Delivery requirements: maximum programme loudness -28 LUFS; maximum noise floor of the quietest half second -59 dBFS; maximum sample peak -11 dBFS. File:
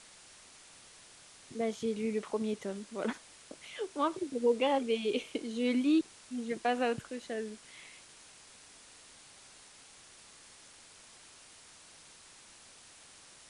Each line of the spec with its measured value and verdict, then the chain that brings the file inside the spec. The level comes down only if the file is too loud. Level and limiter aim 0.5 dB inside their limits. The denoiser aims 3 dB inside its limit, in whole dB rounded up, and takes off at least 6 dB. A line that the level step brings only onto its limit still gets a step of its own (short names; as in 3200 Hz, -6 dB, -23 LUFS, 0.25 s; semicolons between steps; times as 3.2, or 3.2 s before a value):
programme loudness -33.5 LUFS: OK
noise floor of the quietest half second -56 dBFS: fail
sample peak -17.5 dBFS: OK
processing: denoiser 6 dB, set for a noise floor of -56 dBFS